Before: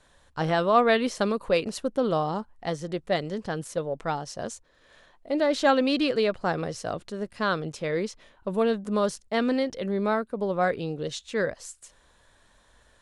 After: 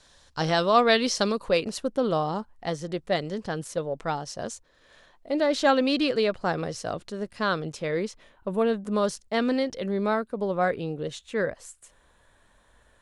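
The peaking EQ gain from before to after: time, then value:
peaking EQ 5.1 kHz 1.1 oct
1.20 s +12.5 dB
1.63 s +2 dB
7.61 s +2 dB
8.64 s -6 dB
9.06 s +2 dB
10.34 s +2 dB
10.96 s -7 dB

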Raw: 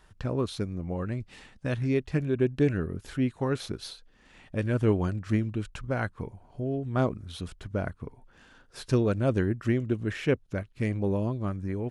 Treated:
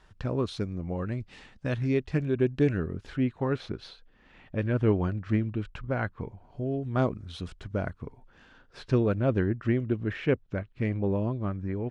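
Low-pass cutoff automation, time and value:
2.76 s 6.4 kHz
3.27 s 3.2 kHz
6.12 s 3.2 kHz
6.63 s 6.3 kHz
8.06 s 6.3 kHz
9.04 s 3.1 kHz

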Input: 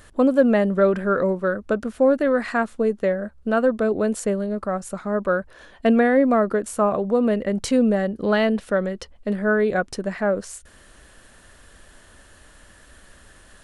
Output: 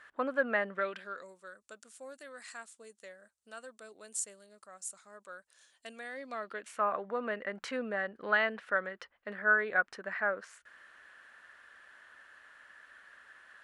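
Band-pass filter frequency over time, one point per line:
band-pass filter, Q 2
0.68 s 1.6 kHz
1.28 s 7.9 kHz
5.99 s 7.9 kHz
6.90 s 1.6 kHz

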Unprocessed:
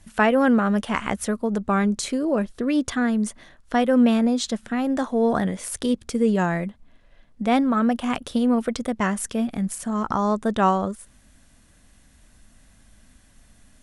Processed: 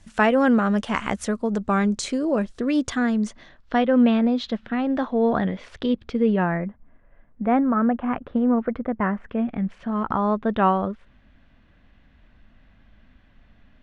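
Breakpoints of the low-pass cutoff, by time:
low-pass 24 dB/octave
2.98 s 8.2 kHz
3.94 s 3.8 kHz
6.23 s 3.8 kHz
6.63 s 1.9 kHz
9.14 s 1.9 kHz
9.80 s 3.2 kHz

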